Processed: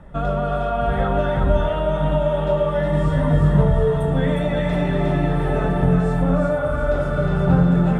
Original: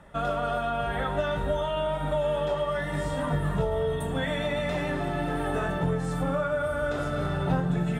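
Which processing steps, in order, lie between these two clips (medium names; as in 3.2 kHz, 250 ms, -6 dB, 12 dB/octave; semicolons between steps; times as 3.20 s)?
tilt EQ -2.5 dB/octave; two-band feedback delay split 540 Hz, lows 96 ms, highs 361 ms, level -3 dB; trim +2.5 dB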